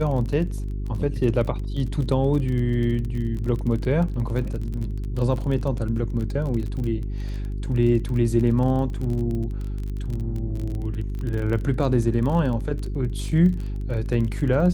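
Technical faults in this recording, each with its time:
crackle 27 per s -29 dBFS
hum 50 Hz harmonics 8 -28 dBFS

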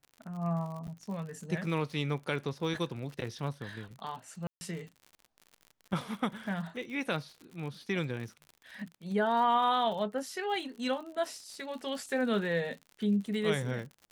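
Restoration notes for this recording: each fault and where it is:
crackle 70 per s -41 dBFS
0.87–0.88 s: dropout 8.9 ms
4.47–4.61 s: dropout 140 ms

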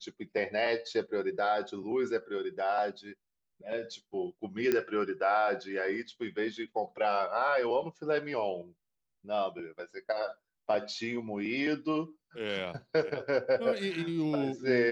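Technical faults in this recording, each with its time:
4.72 s: pop -15 dBFS

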